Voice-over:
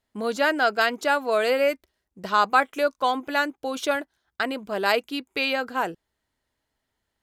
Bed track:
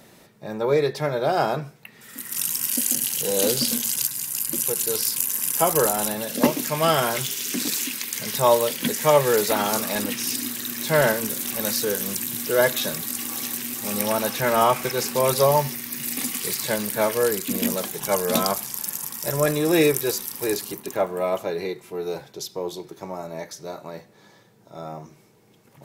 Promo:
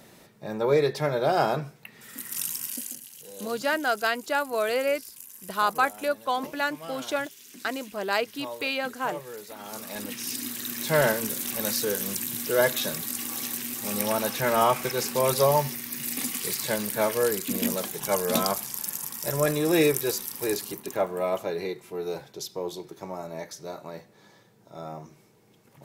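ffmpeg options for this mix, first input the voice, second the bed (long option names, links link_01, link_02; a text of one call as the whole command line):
ffmpeg -i stem1.wav -i stem2.wav -filter_complex "[0:a]adelay=3250,volume=-4dB[link_01];[1:a]volume=16dB,afade=type=out:start_time=2.06:duration=0.96:silence=0.112202,afade=type=in:start_time=9.57:duration=1.14:silence=0.133352[link_02];[link_01][link_02]amix=inputs=2:normalize=0" out.wav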